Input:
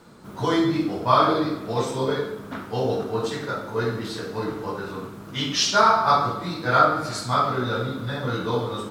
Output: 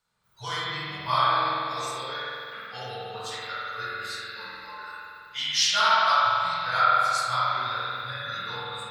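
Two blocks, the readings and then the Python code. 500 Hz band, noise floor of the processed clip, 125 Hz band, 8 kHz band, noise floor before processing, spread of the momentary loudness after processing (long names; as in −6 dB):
−12.0 dB, −48 dBFS, −13.0 dB, −1.0 dB, −40 dBFS, 17 LU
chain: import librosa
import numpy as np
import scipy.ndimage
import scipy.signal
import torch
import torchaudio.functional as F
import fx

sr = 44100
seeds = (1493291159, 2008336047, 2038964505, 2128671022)

y = fx.noise_reduce_blind(x, sr, reduce_db=19)
y = fx.tone_stack(y, sr, knobs='10-0-10')
y = fx.rev_spring(y, sr, rt60_s=2.5, pass_ms=(47,), chirp_ms=40, drr_db=-5.5)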